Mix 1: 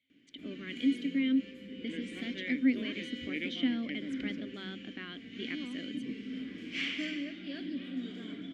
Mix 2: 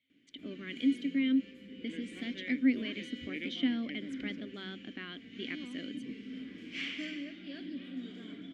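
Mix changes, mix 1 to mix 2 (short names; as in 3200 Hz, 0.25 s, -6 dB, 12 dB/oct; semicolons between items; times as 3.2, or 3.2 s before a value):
first sound -3.5 dB; second sound -6.0 dB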